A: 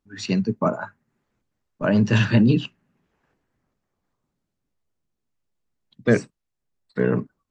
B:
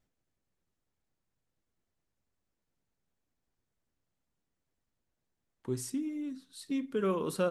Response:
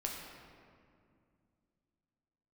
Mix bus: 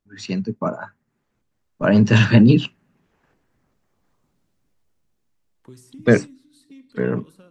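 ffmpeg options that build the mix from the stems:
-filter_complex "[0:a]volume=-2.5dB[link_01];[1:a]acrossover=split=270|1700[link_02][link_03][link_04];[link_02]acompressor=threshold=-42dB:ratio=4[link_05];[link_03]acompressor=threshold=-47dB:ratio=4[link_06];[link_04]acompressor=threshold=-52dB:ratio=4[link_07];[link_05][link_06][link_07]amix=inputs=3:normalize=0,volume=-10.5dB,asplit=2[link_08][link_09];[link_09]volume=-10dB[link_10];[2:a]atrim=start_sample=2205[link_11];[link_10][link_11]afir=irnorm=-1:irlink=0[link_12];[link_01][link_08][link_12]amix=inputs=3:normalize=0,dynaudnorm=framelen=320:gausssize=9:maxgain=14dB"

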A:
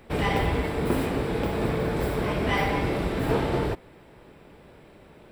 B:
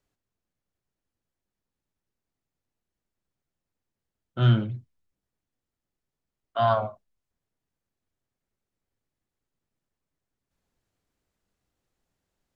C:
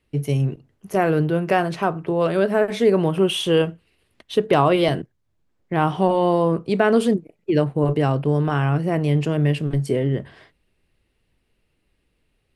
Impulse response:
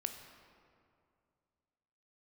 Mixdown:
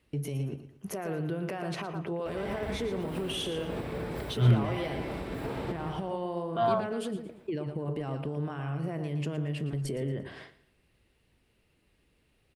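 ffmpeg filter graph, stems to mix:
-filter_complex "[0:a]adelay=2150,volume=-9.5dB,asplit=2[link_01][link_02];[link_02]volume=-8.5dB[link_03];[1:a]aphaser=in_gain=1:out_gain=1:delay=4.9:decay=0.47:speed=0.21:type=sinusoidal,volume=-8dB[link_04];[2:a]acompressor=threshold=-23dB:ratio=6,volume=1dB,asplit=2[link_05][link_06];[link_06]volume=-17dB[link_07];[link_01][link_05]amix=inputs=2:normalize=0,highpass=43,alimiter=level_in=2dB:limit=-24dB:level=0:latency=1:release=137,volume=-2dB,volume=0dB[link_08];[link_03][link_07]amix=inputs=2:normalize=0,aecho=0:1:115|230|345|460|575:1|0.35|0.122|0.0429|0.015[link_09];[link_04][link_08][link_09]amix=inputs=3:normalize=0"

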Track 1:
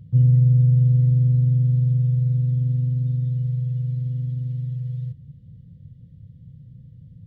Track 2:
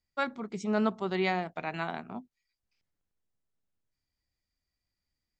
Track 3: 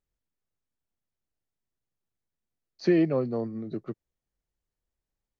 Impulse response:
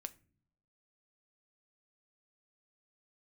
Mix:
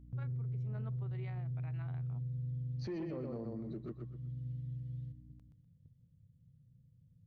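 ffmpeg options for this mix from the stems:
-filter_complex "[0:a]agate=range=-6dB:threshold=-39dB:ratio=16:detection=peak,volume=-14.5dB[link_01];[1:a]lowpass=2500,equalizer=frequency=860:width=1.2:gain=-3.5,volume=-13dB[link_02];[2:a]lowshelf=frequency=190:gain=8.5,flanger=delay=4:depth=4.9:regen=-87:speed=1.9:shape=triangular,aeval=exprs='val(0)+0.00355*(sin(2*PI*60*n/s)+sin(2*PI*2*60*n/s)/2+sin(2*PI*3*60*n/s)/3+sin(2*PI*4*60*n/s)/4+sin(2*PI*5*60*n/s)/5)':channel_layout=same,volume=-4.5dB,asplit=3[link_03][link_04][link_05];[link_04]volume=-6dB[link_06];[link_05]apad=whole_len=320594[link_07];[link_01][link_07]sidechaincompress=threshold=-49dB:ratio=8:attack=49:release=519[link_08];[link_06]aecho=0:1:124|248|372|496:1|0.27|0.0729|0.0197[link_09];[link_08][link_02][link_03][link_09]amix=inputs=4:normalize=0,asoftclip=type=tanh:threshold=-22dB,alimiter=level_in=10.5dB:limit=-24dB:level=0:latency=1:release=106,volume=-10.5dB"

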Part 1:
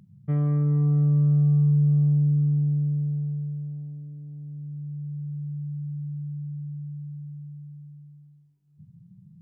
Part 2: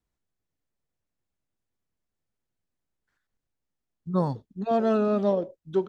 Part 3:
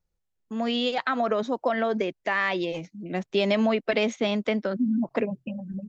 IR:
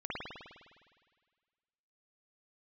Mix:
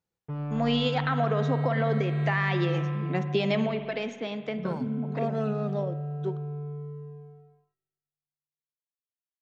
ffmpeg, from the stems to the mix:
-filter_complex "[0:a]asubboost=boost=7:cutoff=150,acrusher=bits=3:mix=0:aa=0.5,volume=-13dB,asplit=2[link_01][link_02];[link_02]volume=-11dB[link_03];[1:a]adelay=500,volume=-8dB,asplit=2[link_04][link_05];[link_05]volume=-20.5dB[link_06];[2:a]highpass=140,highshelf=frequency=5000:gain=-5.5,bandreject=frequency=580:width=12,volume=-0.5dB,afade=type=out:start_time=3.48:duration=0.22:silence=0.398107,asplit=2[link_07][link_08];[link_08]volume=-12.5dB[link_09];[3:a]atrim=start_sample=2205[link_10];[link_03][link_06][link_09]amix=inputs=3:normalize=0[link_11];[link_11][link_10]afir=irnorm=-1:irlink=0[link_12];[link_01][link_04][link_07][link_12]amix=inputs=4:normalize=0,alimiter=limit=-15.5dB:level=0:latency=1:release=228"

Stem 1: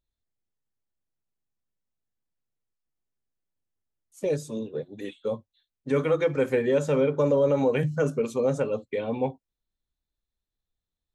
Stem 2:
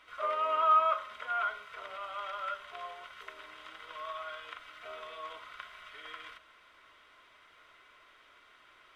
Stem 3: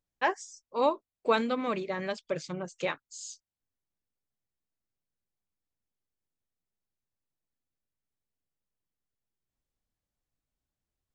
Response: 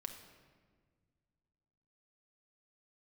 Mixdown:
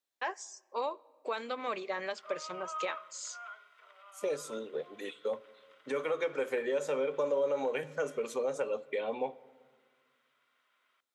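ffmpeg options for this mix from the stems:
-filter_complex "[0:a]volume=-1dB,asplit=2[link_01][link_02];[link_02]volume=-12dB[link_03];[1:a]adelay=2050,volume=-16.5dB,asplit=2[link_04][link_05];[link_05]volume=-7dB[link_06];[2:a]alimiter=limit=-21.5dB:level=0:latency=1:release=218,volume=-0.5dB,asplit=2[link_07][link_08];[link_08]volume=-15dB[link_09];[link_01][link_07]amix=inputs=2:normalize=0,acompressor=threshold=-28dB:ratio=6,volume=0dB[link_10];[3:a]atrim=start_sample=2205[link_11];[link_03][link_06][link_09]amix=inputs=3:normalize=0[link_12];[link_12][link_11]afir=irnorm=-1:irlink=0[link_13];[link_04][link_10][link_13]amix=inputs=3:normalize=0,highpass=480"

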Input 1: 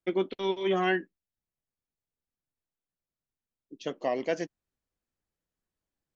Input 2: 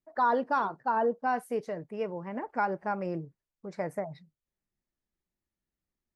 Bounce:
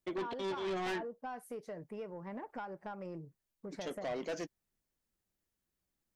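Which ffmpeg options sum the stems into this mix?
ffmpeg -i stem1.wav -i stem2.wav -filter_complex "[0:a]volume=-3dB[link_01];[1:a]acompressor=threshold=-39dB:ratio=5,volume=-1dB[link_02];[link_01][link_02]amix=inputs=2:normalize=0,highshelf=frequency=6900:gain=6,asoftclip=type=tanh:threshold=-33.5dB" out.wav

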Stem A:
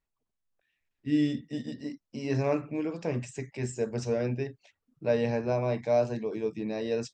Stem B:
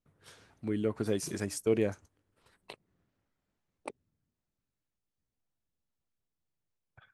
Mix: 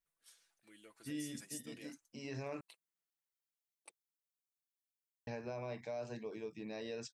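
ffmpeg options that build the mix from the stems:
ffmpeg -i stem1.wav -i stem2.wav -filter_complex "[0:a]tiltshelf=frequency=840:gain=-4,volume=-9.5dB,asplit=3[link_01][link_02][link_03];[link_01]atrim=end=2.61,asetpts=PTS-STARTPTS,afade=type=out:start_time=2.606:duration=0.004:curve=hsin[link_04];[link_02]atrim=start=2.61:end=5.27,asetpts=PTS-STARTPTS,volume=0[link_05];[link_03]atrim=start=5.27,asetpts=PTS-STARTPTS,afade=type=in:duration=0.004:curve=hsin[link_06];[link_04][link_05][link_06]concat=n=3:v=0:a=1[link_07];[1:a]aderivative,aecho=1:1:6:0.63,volume=-5.5dB[link_08];[link_07][link_08]amix=inputs=2:normalize=0,alimiter=level_in=9.5dB:limit=-24dB:level=0:latency=1:release=104,volume=-9.5dB" out.wav

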